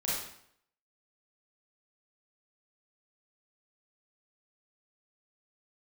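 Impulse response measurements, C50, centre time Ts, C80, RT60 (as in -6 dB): -1.0 dB, 67 ms, 4.0 dB, 0.65 s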